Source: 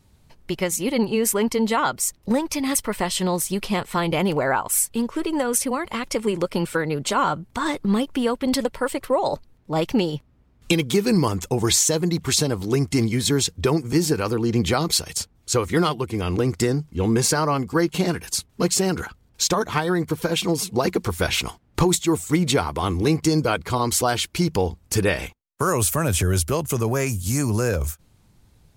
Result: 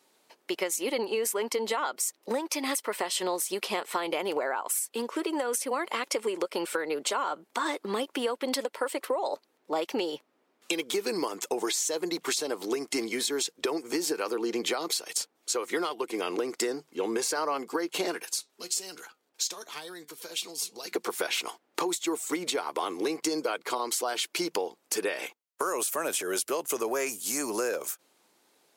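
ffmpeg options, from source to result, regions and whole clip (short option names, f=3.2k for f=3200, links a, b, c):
-filter_complex "[0:a]asettb=1/sr,asplit=3[a][b][c];[a]atrim=end=18.254[d];[b]atrim=start=18.25:end=20.92,asetpts=PTS-STARTPTS,afade=t=in:d=0.004:c=qsin,afade=t=out:st=2.666:d=0.004:c=qsin,acrossover=split=140|3000[e][f][g];[f]acompressor=threshold=-44dB:ratio=2.5:attack=3.2:release=140:knee=2.83:detection=peak[h];[e][h][g]amix=inputs=3:normalize=0,flanger=delay=5.9:depth=2.5:regen=80:speed=1.2:shape=triangular[i];[c]atrim=start=20.916[j];[d][i]acrossfade=d=0.004:c1=hsin:c2=qsin[k];[k][j]acrossfade=d=0.004:c1=qsin:c2=hsin,highpass=f=340:w=0.5412,highpass=f=340:w=1.3066,alimiter=limit=-13.5dB:level=0:latency=1:release=199,acompressor=threshold=-26dB:ratio=6"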